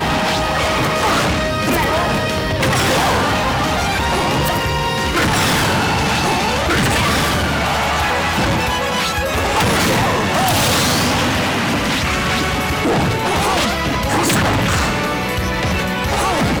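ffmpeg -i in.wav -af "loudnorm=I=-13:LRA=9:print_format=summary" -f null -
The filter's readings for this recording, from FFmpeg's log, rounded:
Input Integrated:    -16.2 LUFS
Input True Peak:      -8.6 dBTP
Input LRA:             1.5 LU
Input Threshold:     -26.2 LUFS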